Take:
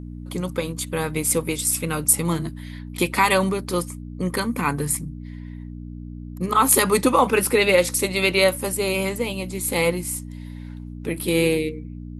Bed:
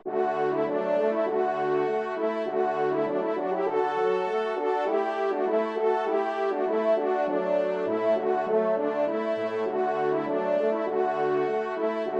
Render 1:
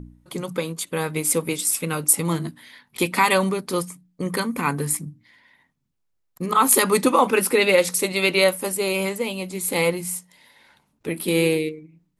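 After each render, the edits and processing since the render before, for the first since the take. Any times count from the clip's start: de-hum 60 Hz, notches 5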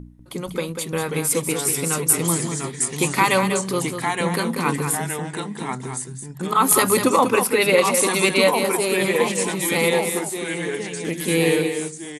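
echo 0.193 s -7.5 dB; echoes that change speed 0.464 s, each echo -2 st, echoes 2, each echo -6 dB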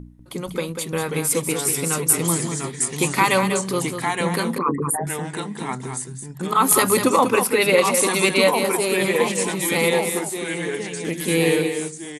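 4.58–5.07 formant sharpening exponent 3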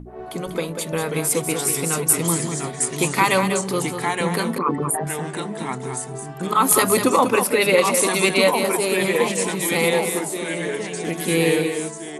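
add bed -10 dB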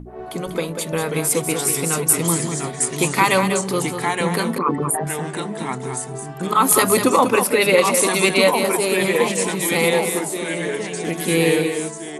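gain +1.5 dB; limiter -1 dBFS, peak gain reduction 1 dB

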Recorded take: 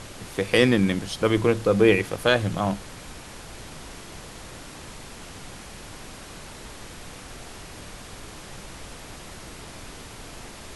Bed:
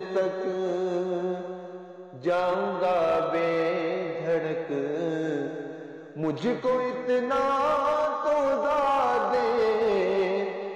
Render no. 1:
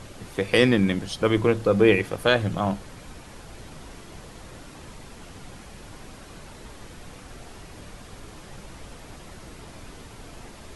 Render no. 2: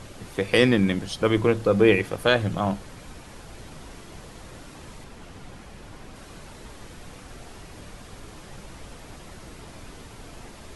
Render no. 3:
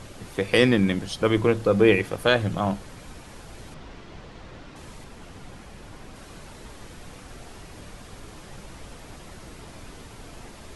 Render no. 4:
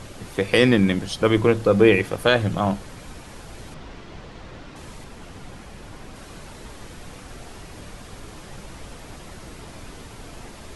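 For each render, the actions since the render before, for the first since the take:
denoiser 6 dB, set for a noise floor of -42 dBFS
5.04–6.16 high shelf 4300 Hz -5.5 dB
3.74–4.76 LPF 4400 Hz
gain +3 dB; limiter -3 dBFS, peak gain reduction 2 dB

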